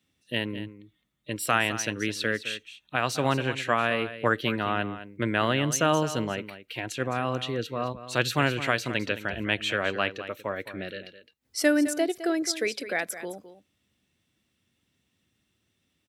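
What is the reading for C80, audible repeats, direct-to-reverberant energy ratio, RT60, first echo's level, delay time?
no reverb audible, 1, no reverb audible, no reverb audible, −13.0 dB, 212 ms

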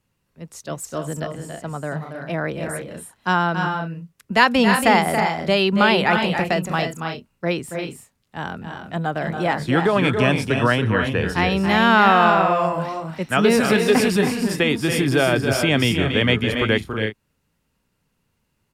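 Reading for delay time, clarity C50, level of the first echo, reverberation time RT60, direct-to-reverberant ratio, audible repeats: 279 ms, no reverb audible, −7.5 dB, no reverb audible, no reverb audible, 2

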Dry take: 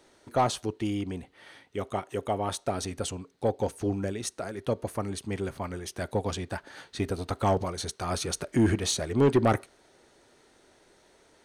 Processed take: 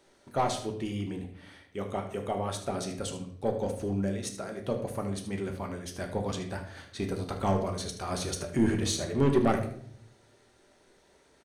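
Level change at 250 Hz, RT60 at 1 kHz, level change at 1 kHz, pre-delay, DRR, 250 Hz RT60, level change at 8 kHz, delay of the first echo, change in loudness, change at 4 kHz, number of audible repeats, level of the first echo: −1.0 dB, 0.50 s, −2.5 dB, 5 ms, 3.0 dB, 0.90 s, −2.5 dB, 76 ms, −2.0 dB, −2.5 dB, 1, −12.0 dB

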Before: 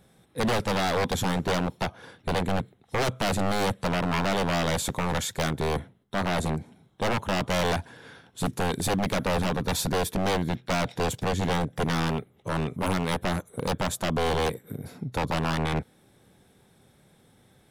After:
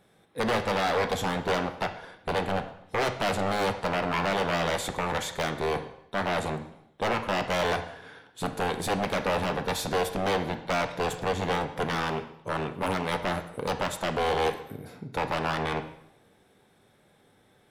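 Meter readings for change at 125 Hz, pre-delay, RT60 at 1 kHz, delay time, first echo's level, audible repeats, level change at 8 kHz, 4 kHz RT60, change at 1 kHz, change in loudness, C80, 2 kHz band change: −6.0 dB, 4 ms, 0.75 s, no echo audible, no echo audible, no echo audible, −5.0 dB, 0.70 s, +1.0 dB, −1.0 dB, 13.5 dB, +0.5 dB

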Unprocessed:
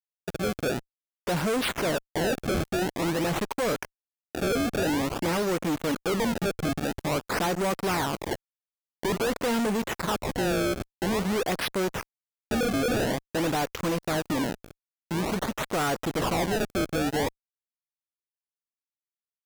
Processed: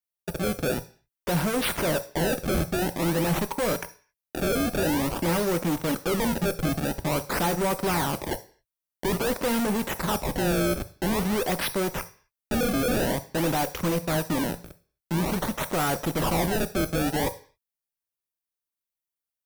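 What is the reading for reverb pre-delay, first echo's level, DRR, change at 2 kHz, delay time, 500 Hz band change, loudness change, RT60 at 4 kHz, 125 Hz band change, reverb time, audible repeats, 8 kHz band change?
3 ms, no echo audible, 10.5 dB, 0.0 dB, no echo audible, +0.5 dB, +1.5 dB, 0.50 s, +3.5 dB, 0.45 s, no echo audible, +3.0 dB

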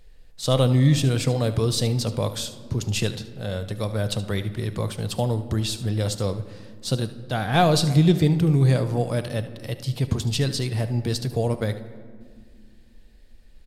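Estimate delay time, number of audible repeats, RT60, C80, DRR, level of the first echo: 74 ms, 1, 2.1 s, 15.0 dB, 10.0 dB, −15.0 dB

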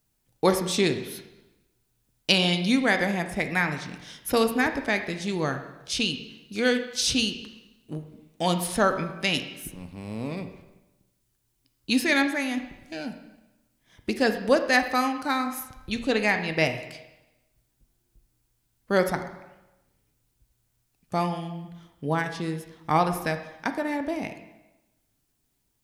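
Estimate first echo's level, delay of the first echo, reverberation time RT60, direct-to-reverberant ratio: no echo audible, no echo audible, 1.0 s, 7.0 dB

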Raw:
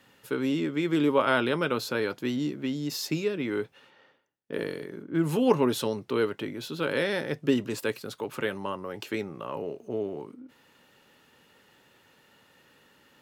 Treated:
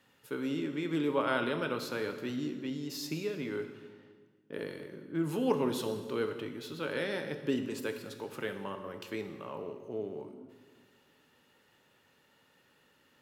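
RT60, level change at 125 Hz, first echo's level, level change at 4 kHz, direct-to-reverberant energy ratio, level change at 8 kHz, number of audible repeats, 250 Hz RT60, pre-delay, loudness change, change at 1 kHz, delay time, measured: 1.5 s, −7.0 dB, no echo audible, −7.0 dB, 7.0 dB, −7.0 dB, no echo audible, 2.0 s, 16 ms, −6.5 dB, −6.5 dB, no echo audible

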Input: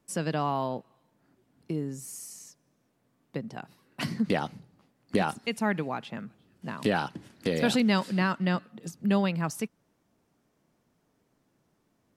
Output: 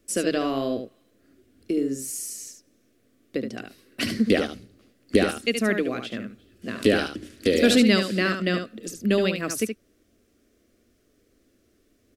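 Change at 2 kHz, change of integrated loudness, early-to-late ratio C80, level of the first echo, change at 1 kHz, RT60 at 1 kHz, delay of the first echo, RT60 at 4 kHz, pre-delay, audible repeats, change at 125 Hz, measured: +6.0 dB, +5.5 dB, no reverb audible, −7.0 dB, −2.5 dB, no reverb audible, 73 ms, no reverb audible, no reverb audible, 1, −0.5 dB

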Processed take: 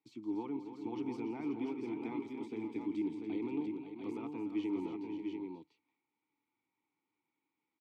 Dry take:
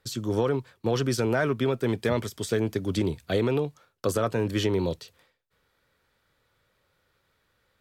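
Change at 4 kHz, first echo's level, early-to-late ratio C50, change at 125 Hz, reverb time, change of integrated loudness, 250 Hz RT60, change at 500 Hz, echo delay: −23.0 dB, −14.0 dB, no reverb audible, −25.0 dB, no reverb audible, −12.5 dB, no reverb audible, −17.5 dB, 168 ms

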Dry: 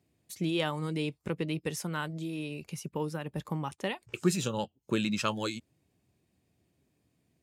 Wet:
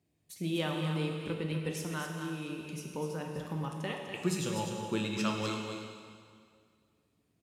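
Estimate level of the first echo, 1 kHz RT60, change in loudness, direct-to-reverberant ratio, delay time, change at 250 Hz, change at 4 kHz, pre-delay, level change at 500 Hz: −7.0 dB, 2.1 s, −2.0 dB, 0.5 dB, 248 ms, −2.0 dB, −2.0 dB, 6 ms, −2.0 dB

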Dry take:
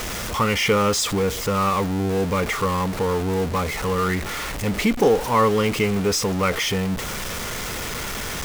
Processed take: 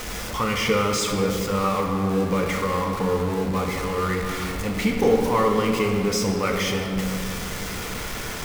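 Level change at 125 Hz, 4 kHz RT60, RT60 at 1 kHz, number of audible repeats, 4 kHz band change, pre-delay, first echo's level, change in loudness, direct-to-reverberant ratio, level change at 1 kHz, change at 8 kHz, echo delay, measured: −2.0 dB, 1.5 s, 2.3 s, no echo audible, −3.0 dB, 4 ms, no echo audible, −1.5 dB, 1.5 dB, −2.0 dB, −3.5 dB, no echo audible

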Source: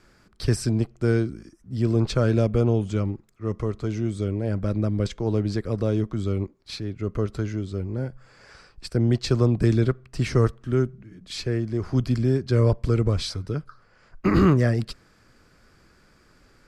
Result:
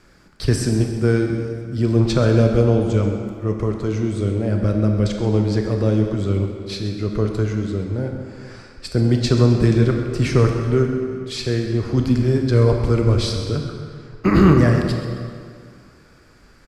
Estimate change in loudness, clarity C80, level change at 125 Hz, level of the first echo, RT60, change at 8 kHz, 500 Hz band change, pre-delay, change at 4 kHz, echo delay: +5.5 dB, 4.5 dB, +5.5 dB, −13.5 dB, 2.2 s, +5.5 dB, +6.0 dB, 21 ms, +5.5 dB, 131 ms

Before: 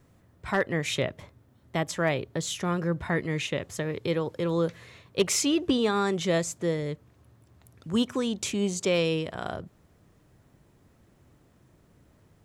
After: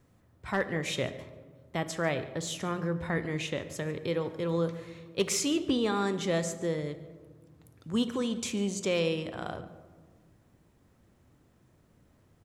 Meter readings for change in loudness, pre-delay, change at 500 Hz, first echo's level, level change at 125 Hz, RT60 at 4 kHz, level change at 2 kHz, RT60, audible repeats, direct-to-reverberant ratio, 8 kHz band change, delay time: −3.5 dB, 4 ms, −3.5 dB, −19.5 dB, −3.5 dB, 0.70 s, −3.5 dB, 1.6 s, 1, 10.0 dB, −3.5 dB, 143 ms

